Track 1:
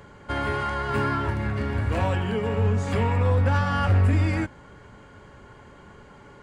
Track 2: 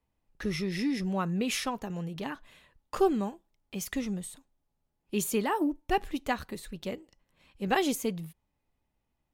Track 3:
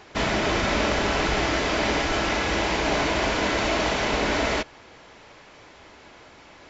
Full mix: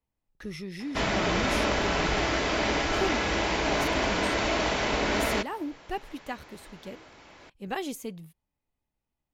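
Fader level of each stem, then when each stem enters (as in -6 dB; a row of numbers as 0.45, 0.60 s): off, -6.0 dB, -3.0 dB; off, 0.00 s, 0.80 s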